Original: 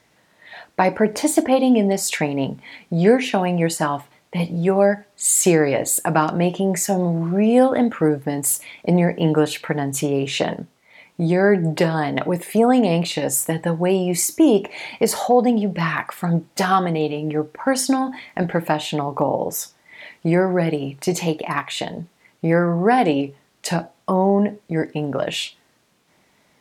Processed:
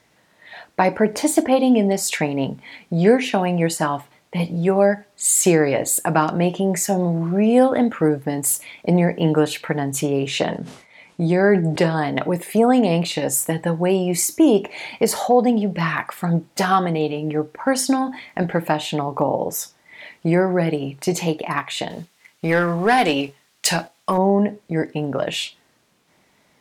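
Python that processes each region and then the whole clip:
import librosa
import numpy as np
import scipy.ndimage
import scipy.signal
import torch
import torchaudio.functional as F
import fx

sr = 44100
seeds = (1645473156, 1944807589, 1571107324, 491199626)

y = fx.chain(x, sr, fx.lowpass(hz=11000.0, slope=24),
    fx.sustainer(db_per_s=100.0), at=(10.45, 12.01))
y = fx.chain(y, sr, fx.tilt_shelf(db=-6.5, hz=1100.0),
    fx.leveller(passes=1), at=(21.9, 24.18))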